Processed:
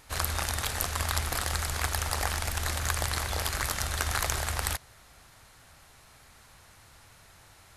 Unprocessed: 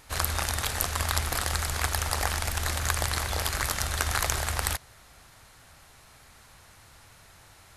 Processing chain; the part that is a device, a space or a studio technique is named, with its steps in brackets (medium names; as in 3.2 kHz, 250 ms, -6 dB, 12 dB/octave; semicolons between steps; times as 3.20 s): parallel distortion (in parallel at -10 dB: hard clipper -19 dBFS, distortion -13 dB); on the sum: trim -4 dB